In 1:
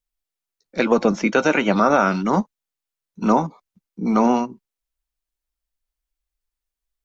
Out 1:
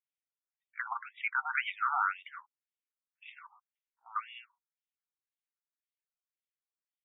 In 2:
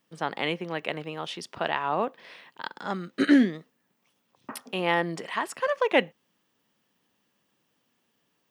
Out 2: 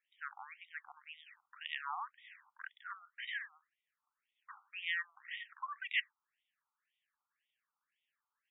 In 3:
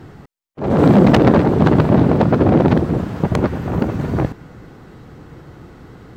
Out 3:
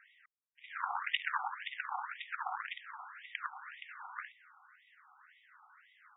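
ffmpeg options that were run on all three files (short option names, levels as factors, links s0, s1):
-af "lowshelf=f=470:t=q:w=3:g=14,afftfilt=real='re*between(b*sr/1024,1000*pow(2700/1000,0.5+0.5*sin(2*PI*1.9*pts/sr))/1.41,1000*pow(2700/1000,0.5+0.5*sin(2*PI*1.9*pts/sr))*1.41)':imag='im*between(b*sr/1024,1000*pow(2700/1000,0.5+0.5*sin(2*PI*1.9*pts/sr))/1.41,1000*pow(2700/1000,0.5+0.5*sin(2*PI*1.9*pts/sr))*1.41)':win_size=1024:overlap=0.75,volume=0.501"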